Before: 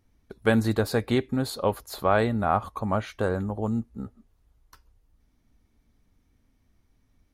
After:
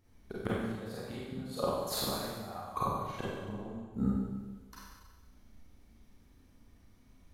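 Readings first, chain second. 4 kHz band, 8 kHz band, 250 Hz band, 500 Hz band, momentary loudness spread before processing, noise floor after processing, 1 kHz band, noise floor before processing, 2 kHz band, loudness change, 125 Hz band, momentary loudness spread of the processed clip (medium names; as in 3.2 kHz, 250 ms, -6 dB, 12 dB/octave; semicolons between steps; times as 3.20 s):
-3.5 dB, -1.5 dB, -9.0 dB, -11.5 dB, 7 LU, -62 dBFS, -9.5 dB, -68 dBFS, -14.5 dB, -10.5 dB, -10.5 dB, 14 LU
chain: inverted gate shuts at -21 dBFS, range -25 dB; Schroeder reverb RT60 1.3 s, combs from 31 ms, DRR -7.5 dB; trim -2 dB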